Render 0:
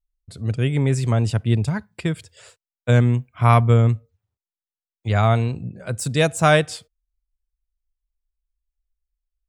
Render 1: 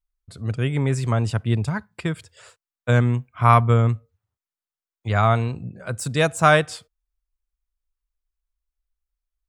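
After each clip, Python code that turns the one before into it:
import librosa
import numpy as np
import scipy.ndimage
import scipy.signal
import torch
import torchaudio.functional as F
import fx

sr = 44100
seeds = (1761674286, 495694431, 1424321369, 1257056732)

y = fx.peak_eq(x, sr, hz=1200.0, db=6.5, octaves=1.1)
y = y * 10.0 ** (-2.5 / 20.0)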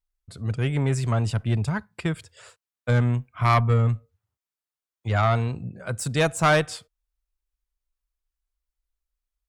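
y = fx.tube_stage(x, sr, drive_db=12.0, bias=0.25)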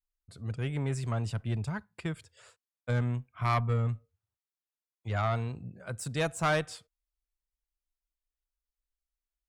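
y = fx.vibrato(x, sr, rate_hz=0.36, depth_cents=12.0)
y = y * 10.0 ** (-8.5 / 20.0)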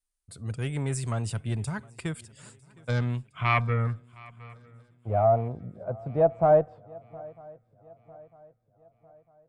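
y = fx.filter_sweep_lowpass(x, sr, from_hz=9400.0, to_hz=670.0, start_s=2.46, end_s=4.67, q=3.9)
y = fx.echo_swing(y, sr, ms=951, ratio=3, feedback_pct=43, wet_db=-23.5)
y = y * 10.0 ** (2.0 / 20.0)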